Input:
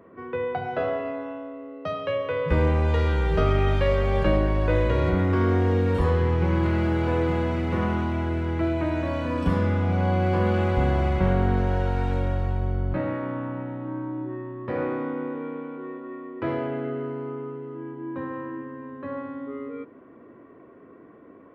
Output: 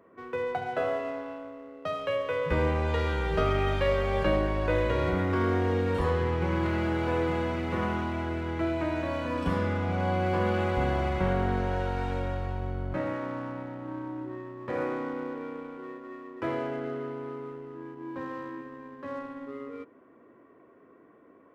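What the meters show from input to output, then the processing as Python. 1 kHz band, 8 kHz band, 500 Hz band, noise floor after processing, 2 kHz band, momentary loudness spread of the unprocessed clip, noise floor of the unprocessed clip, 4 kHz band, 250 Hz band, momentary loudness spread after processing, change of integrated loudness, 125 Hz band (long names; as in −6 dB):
−2.0 dB, can't be measured, −3.0 dB, −57 dBFS, −1.5 dB, 13 LU, −49 dBFS, −1.0 dB, −5.0 dB, 14 LU, −4.5 dB, −7.5 dB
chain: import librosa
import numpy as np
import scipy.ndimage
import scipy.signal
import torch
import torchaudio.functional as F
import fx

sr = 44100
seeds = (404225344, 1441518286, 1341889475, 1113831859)

p1 = fx.low_shelf(x, sr, hz=290.0, db=-7.0)
p2 = np.sign(p1) * np.maximum(np.abs(p1) - 10.0 ** (-41.0 / 20.0), 0.0)
p3 = p1 + (p2 * librosa.db_to_amplitude(-3.5))
y = p3 * librosa.db_to_amplitude(-5.0)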